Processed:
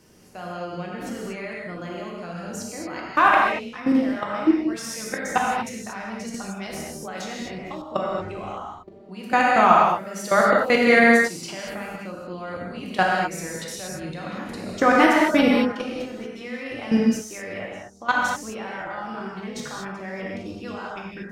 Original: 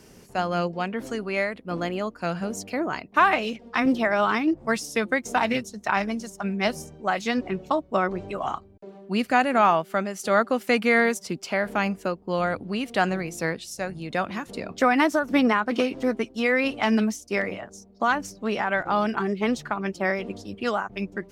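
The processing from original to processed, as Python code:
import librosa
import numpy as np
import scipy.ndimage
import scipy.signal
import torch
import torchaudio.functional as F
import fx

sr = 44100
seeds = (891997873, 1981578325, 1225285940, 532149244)

y = fx.low_shelf(x, sr, hz=340.0, db=6.5, at=(14.33, 14.83))
y = fx.level_steps(y, sr, step_db=20)
y = fx.rev_gated(y, sr, seeds[0], gate_ms=260, shape='flat', drr_db=-4.0)
y = fx.band_squash(y, sr, depth_pct=100, at=(6.34, 7.82))
y = y * 10.0 ** (2.5 / 20.0)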